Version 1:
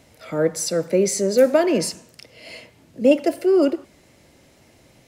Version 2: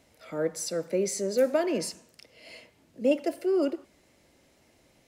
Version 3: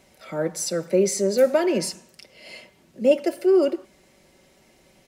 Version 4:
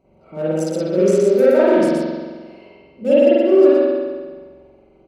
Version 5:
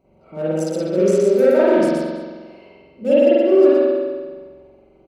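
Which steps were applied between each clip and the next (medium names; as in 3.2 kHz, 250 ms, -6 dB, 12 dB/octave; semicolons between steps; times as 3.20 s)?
peaking EQ 120 Hz -5.5 dB 1 oct; trim -8.5 dB
comb 5.3 ms, depth 48%; trim +5 dB
local Wiener filter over 25 samples; delay 120 ms -4 dB; spring tank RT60 1.5 s, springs 44 ms, chirp 25 ms, DRR -10 dB; trim -4 dB
delay 210 ms -18 dB; trim -1 dB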